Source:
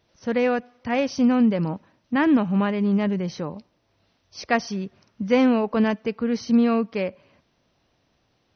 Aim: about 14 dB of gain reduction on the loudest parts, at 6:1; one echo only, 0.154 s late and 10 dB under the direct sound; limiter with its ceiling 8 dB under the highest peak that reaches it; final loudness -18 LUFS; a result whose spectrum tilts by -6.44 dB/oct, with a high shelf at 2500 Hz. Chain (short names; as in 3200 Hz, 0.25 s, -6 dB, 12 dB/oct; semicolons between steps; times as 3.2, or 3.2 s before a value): high shelf 2500 Hz -7 dB; compressor 6:1, threshold -30 dBFS; limiter -26.5 dBFS; echo 0.154 s -10 dB; gain +17.5 dB